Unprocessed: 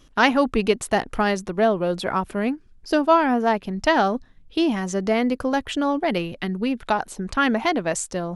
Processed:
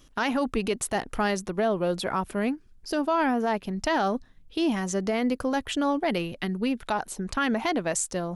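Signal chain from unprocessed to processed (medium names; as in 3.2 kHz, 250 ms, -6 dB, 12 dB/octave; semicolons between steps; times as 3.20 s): treble shelf 7.2 kHz +7.5 dB; peak limiter -13.5 dBFS, peak gain reduction 10 dB; trim -3 dB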